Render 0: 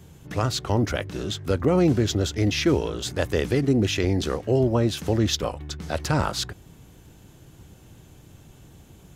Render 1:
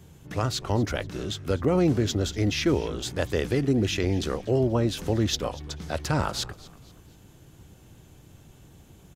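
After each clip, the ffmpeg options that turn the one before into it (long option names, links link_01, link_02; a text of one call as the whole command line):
ffmpeg -i in.wav -filter_complex "[0:a]asplit=4[link_01][link_02][link_03][link_04];[link_02]adelay=240,afreqshift=-82,volume=-20dB[link_05];[link_03]adelay=480,afreqshift=-164,volume=-28dB[link_06];[link_04]adelay=720,afreqshift=-246,volume=-35.9dB[link_07];[link_01][link_05][link_06][link_07]amix=inputs=4:normalize=0,volume=-2.5dB" out.wav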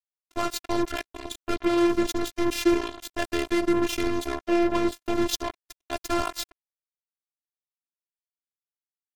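ffmpeg -i in.wav -af "aecho=1:1:70:0.106,acrusher=bits=3:mix=0:aa=0.5,afftfilt=real='hypot(re,im)*cos(PI*b)':imag='0':win_size=512:overlap=0.75,volume=3.5dB" out.wav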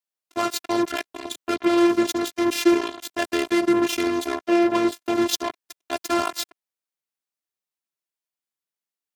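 ffmpeg -i in.wav -af "highpass=160,volume=4dB" out.wav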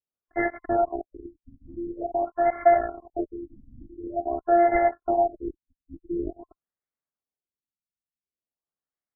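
ffmpeg -i in.wav -af "afftfilt=real='real(if(between(b,1,1008),(2*floor((b-1)/48)+1)*48-b,b),0)':imag='imag(if(between(b,1,1008),(2*floor((b-1)/48)+1)*48-b,b),0)*if(between(b,1,1008),-1,1)':win_size=2048:overlap=0.75,equalizer=frequency=1800:width=1.9:gain=-2.5,afftfilt=real='re*lt(b*sr/1024,280*pow(2300/280,0.5+0.5*sin(2*PI*0.47*pts/sr)))':imag='im*lt(b*sr/1024,280*pow(2300/280,0.5+0.5*sin(2*PI*0.47*pts/sr)))':win_size=1024:overlap=0.75" out.wav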